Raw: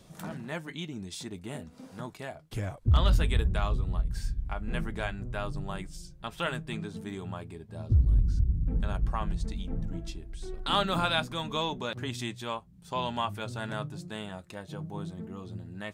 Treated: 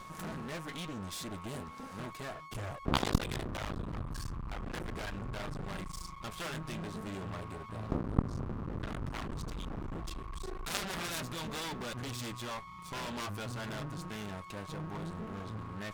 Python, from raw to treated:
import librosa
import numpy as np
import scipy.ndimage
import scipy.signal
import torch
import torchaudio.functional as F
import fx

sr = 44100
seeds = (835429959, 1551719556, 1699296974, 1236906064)

y = x + 10.0 ** (-48.0 / 20.0) * np.sin(2.0 * np.pi * 1100.0 * np.arange(len(x)) / sr)
y = np.maximum(y, 0.0)
y = fx.cheby_harmonics(y, sr, harmonics=(4, 8), levels_db=(-10, -25), full_scale_db=-13.5)
y = y * 10.0 ** (7.0 / 20.0)